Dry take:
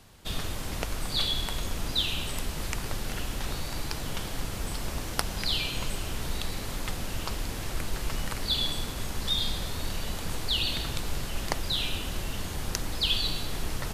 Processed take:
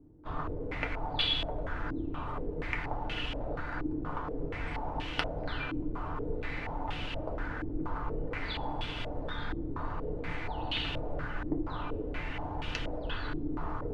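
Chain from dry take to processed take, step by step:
feedback delay network reverb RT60 0.31 s, low-frequency decay 0.8×, high-frequency decay 0.4×, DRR 0 dB
low-pass on a step sequencer 4.2 Hz 330–2,900 Hz
level −6.5 dB

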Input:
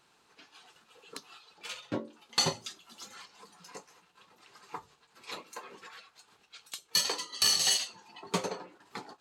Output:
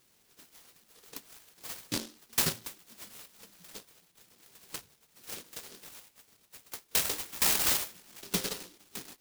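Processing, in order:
short delay modulated by noise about 4,300 Hz, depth 0.41 ms

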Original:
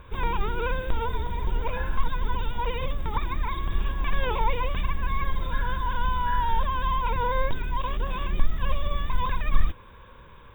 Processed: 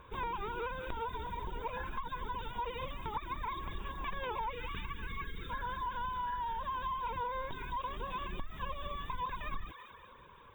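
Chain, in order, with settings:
low-shelf EQ 69 Hz −9.5 dB
gain on a spectral selection 0:04.52–0:05.50, 510–1,100 Hz −22 dB
graphic EQ with 15 bands 400 Hz +3 dB, 1,000 Hz +5 dB, 6,300 Hz +7 dB
delay with a high-pass on its return 191 ms, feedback 50%, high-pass 1,500 Hz, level −7 dB
downward compressor 6 to 1, threshold −26 dBFS, peak gain reduction 7.5 dB
reverb reduction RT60 0.57 s
level −7 dB

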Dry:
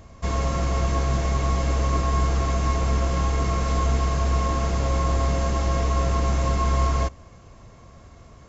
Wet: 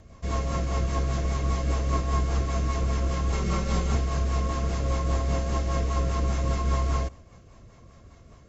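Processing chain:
0:03.32–0:03.95: comb filter 5.2 ms, depth 98%
rotating-speaker cabinet horn 5 Hz
level −2 dB

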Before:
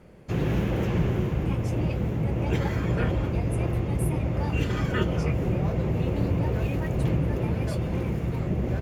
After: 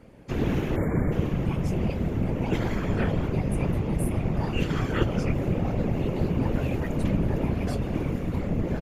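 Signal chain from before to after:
time-frequency box erased 0:00.76–0:01.12, 2,300–6,900 Hz
random phases in short frames
downsampling to 32,000 Hz

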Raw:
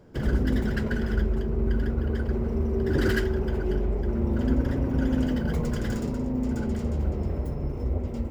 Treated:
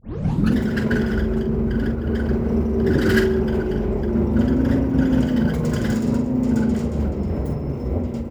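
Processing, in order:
turntable start at the beginning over 0.55 s
high-pass filter 77 Hz 12 dB per octave
parametric band 200 Hz +4 dB 0.92 octaves
double-tracking delay 45 ms −9 dB
slap from a distant wall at 23 metres, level −18 dB
amplitude modulation by smooth noise, depth 50%
level +8 dB

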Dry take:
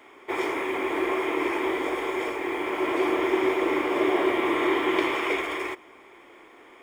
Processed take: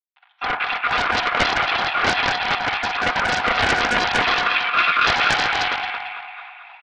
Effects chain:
time-frequency cells dropped at random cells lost 65%
automatic gain control gain up to 15 dB
bit reduction 7 bits
convolution reverb RT60 1.1 s, pre-delay 5 ms, DRR 2.5 dB
asymmetric clip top −8.5 dBFS
notch filter 2,500 Hz, Q 16
repeating echo 224 ms, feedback 53%, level −5.5 dB
single-sideband voice off tune +350 Hz 450–3,000 Hz
highs frequency-modulated by the lows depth 0.52 ms
level −2 dB

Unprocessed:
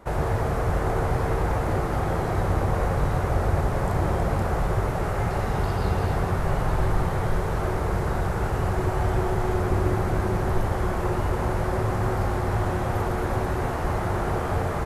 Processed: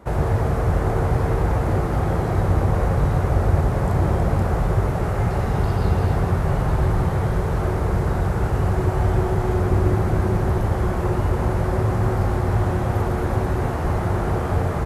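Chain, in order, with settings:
high-pass filter 41 Hz
low-shelf EQ 360 Hz +6.5 dB

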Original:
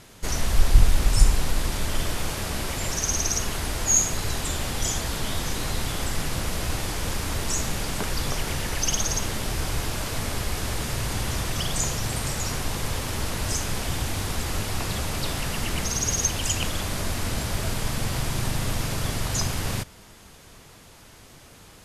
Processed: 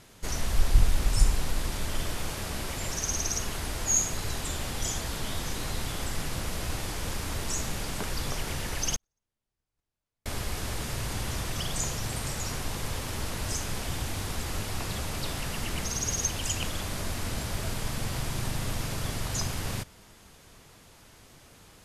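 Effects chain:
0:08.96–0:10.26: noise gate −17 dBFS, range −56 dB
level −5 dB

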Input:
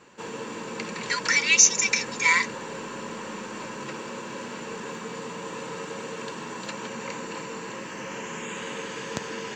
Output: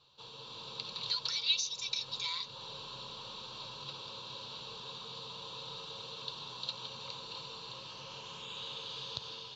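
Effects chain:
downward compressor 2 to 1, threshold −32 dBFS, peak gain reduction 11.5 dB
drawn EQ curve 130 Hz 0 dB, 200 Hz −18 dB, 300 Hz −19 dB, 490 Hz −11 dB, 1,200 Hz −6 dB, 1,900 Hz −24 dB, 3,800 Hz +14 dB, 8,200 Hz −22 dB, 12,000 Hz −19 dB
automatic gain control gain up to 5 dB
level −8.5 dB

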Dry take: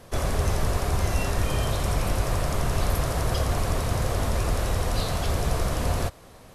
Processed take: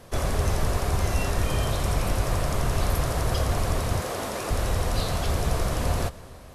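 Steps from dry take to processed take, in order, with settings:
0:04.00–0:04.51: high-pass filter 240 Hz 12 dB per octave
convolution reverb RT60 2.7 s, pre-delay 113 ms, DRR 18.5 dB

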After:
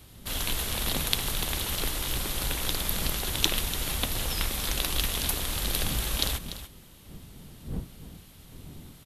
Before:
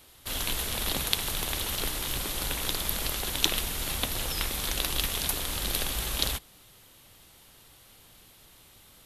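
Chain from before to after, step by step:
wind on the microphone 190 Hz −47 dBFS
bass and treble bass +3 dB, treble 0 dB
single-tap delay 292 ms −12.5 dB

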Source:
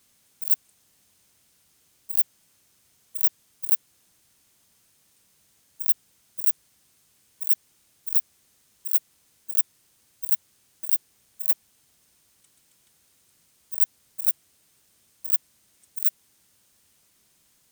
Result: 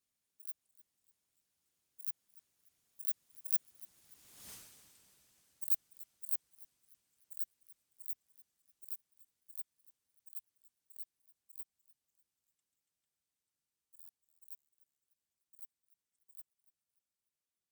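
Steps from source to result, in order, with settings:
source passing by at 0:04.51, 17 m/s, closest 1.2 metres
harmonic and percussive parts rebalanced harmonic −6 dB
buffer that repeats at 0:13.99, samples 512, times 8
feedback echo with a swinging delay time 294 ms, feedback 53%, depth 185 cents, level −17.5 dB
level +15.5 dB

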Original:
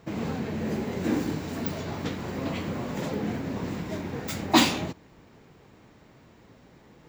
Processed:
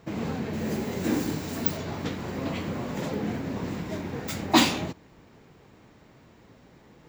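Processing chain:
0:00.53–0:01.77: high-shelf EQ 5,800 Hz +9.5 dB

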